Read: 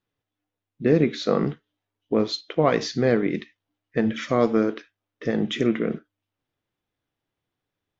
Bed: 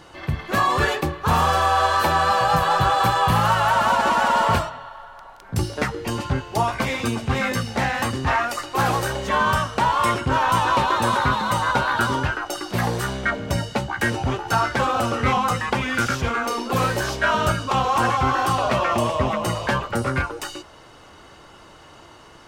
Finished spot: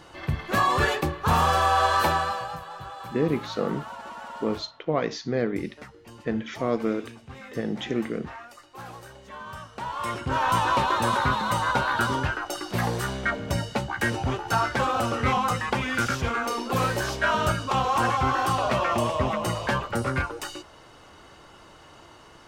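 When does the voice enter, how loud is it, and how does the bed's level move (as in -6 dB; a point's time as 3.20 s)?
2.30 s, -5.5 dB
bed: 2.08 s -2.5 dB
2.65 s -20.5 dB
9.45 s -20.5 dB
10.47 s -3.5 dB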